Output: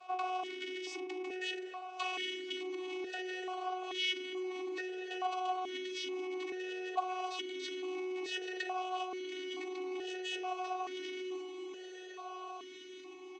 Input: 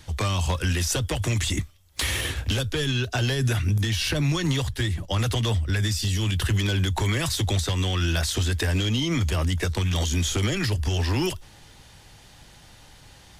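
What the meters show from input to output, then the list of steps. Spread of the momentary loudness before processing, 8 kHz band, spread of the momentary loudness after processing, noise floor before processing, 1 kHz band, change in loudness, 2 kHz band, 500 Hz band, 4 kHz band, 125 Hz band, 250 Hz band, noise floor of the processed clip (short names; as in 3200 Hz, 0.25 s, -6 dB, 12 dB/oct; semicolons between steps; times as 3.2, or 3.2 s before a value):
3 LU, -23.0 dB, 9 LU, -50 dBFS, -2.0 dB, -14.5 dB, -11.0 dB, -7.0 dB, -13.0 dB, under -40 dB, -13.5 dB, -50 dBFS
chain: half-waves squared off; vocoder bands 16, saw 369 Hz; in parallel at 0 dB: soft clip -23 dBFS, distortion -7 dB; on the sum: added noise brown -50 dBFS; doubler 41 ms -9.5 dB; compressor, threshold -21 dBFS, peak gain reduction 13.5 dB; on a send: diffused feedback echo 1.428 s, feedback 66%, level -11 dB; on the sum: transient shaper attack 0 dB, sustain +5 dB; notches 60/120/180/240/300/360 Hz; limiter -18.5 dBFS, peak gain reduction 5.5 dB; tilt +3.5 dB/oct; vowel sequencer 2.3 Hz; gain +1 dB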